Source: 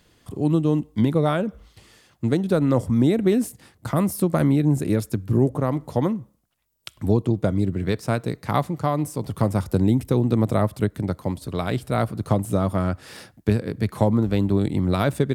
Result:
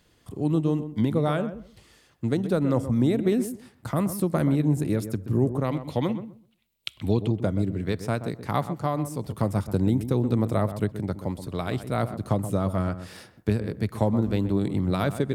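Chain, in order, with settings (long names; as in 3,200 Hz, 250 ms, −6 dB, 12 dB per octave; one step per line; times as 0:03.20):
0:05.64–0:07.28: flat-topped bell 3,000 Hz +10 dB 1.2 octaves
feedback echo with a low-pass in the loop 127 ms, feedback 19%, low-pass 1,300 Hz, level −10.5 dB
level −4 dB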